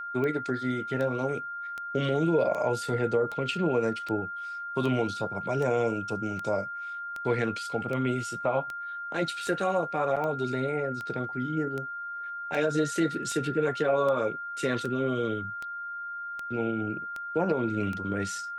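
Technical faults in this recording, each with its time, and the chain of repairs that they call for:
tick 78 rpm -22 dBFS
tone 1400 Hz -34 dBFS
10.16–10.17 gap 6.6 ms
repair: de-click; notch 1400 Hz, Q 30; interpolate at 10.16, 6.6 ms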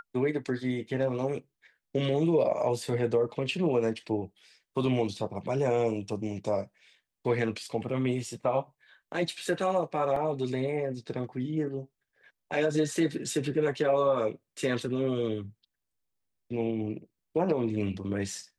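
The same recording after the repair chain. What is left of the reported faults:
none

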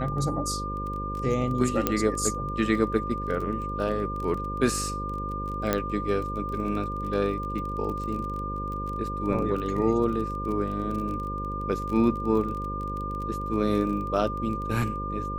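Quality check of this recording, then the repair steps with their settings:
buzz 50 Hz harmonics 11 -34 dBFS
crackle 23/s -33 dBFS
tone 1200 Hz -32 dBFS
1.87 pop -8 dBFS
5.73 pop -9 dBFS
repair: de-click; de-hum 50 Hz, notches 11; notch 1200 Hz, Q 30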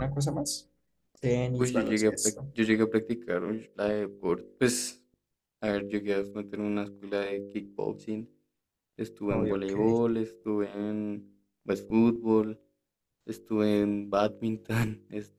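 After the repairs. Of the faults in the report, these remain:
1.87 pop

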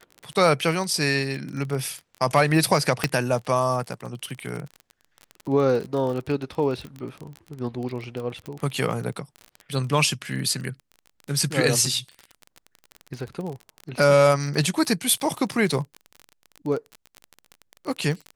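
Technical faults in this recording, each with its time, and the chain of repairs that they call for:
crackle 30/s -29 dBFS
3.04 pop -6 dBFS
8.46 pop -22 dBFS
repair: de-click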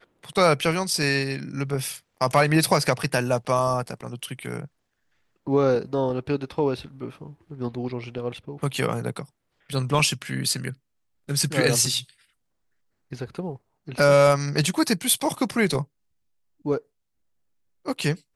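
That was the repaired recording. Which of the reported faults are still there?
none

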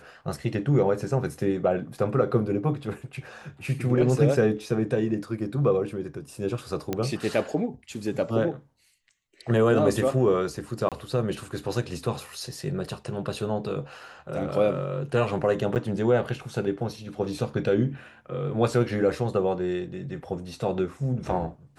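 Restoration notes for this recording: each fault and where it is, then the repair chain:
6.93 pop -13 dBFS
10.89–10.92 gap 27 ms
15.75–15.76 gap 8.6 ms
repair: de-click; interpolate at 10.89, 27 ms; interpolate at 15.75, 8.6 ms

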